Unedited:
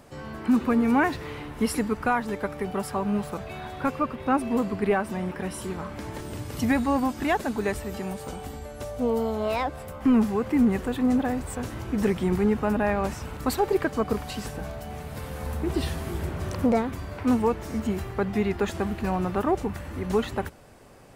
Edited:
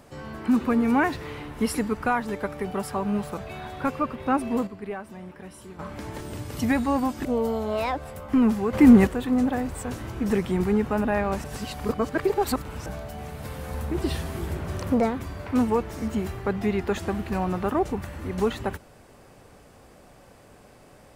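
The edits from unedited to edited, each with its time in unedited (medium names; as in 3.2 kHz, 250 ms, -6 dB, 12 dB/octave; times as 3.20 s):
4.27–6.19 s: dip -10.5 dB, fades 0.40 s logarithmic
7.25–8.97 s: delete
10.45–10.79 s: gain +8 dB
13.16–14.58 s: reverse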